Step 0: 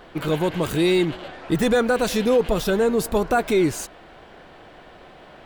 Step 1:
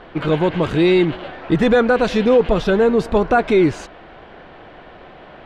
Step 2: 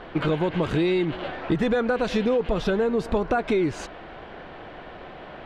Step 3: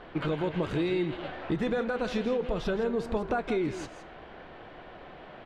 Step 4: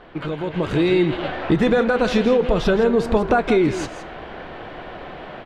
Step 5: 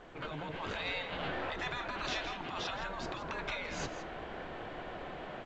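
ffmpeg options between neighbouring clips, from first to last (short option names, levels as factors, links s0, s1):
-af "lowpass=3300,volume=1.78"
-af "acompressor=threshold=0.1:ratio=6"
-filter_complex "[0:a]flanger=delay=6.8:depth=7.1:regen=-83:speed=0.4:shape=sinusoidal,asplit=2[s0][s1];[s1]aecho=0:1:165:0.266[s2];[s0][s2]amix=inputs=2:normalize=0,volume=0.794"
-af "dynaudnorm=f=450:g=3:m=3.16,volume=1.26"
-af "afftfilt=real='re*lt(hypot(re,im),0.251)':imag='im*lt(hypot(re,im),0.251)':win_size=1024:overlap=0.75,volume=0.376" -ar 16000 -c:a pcm_alaw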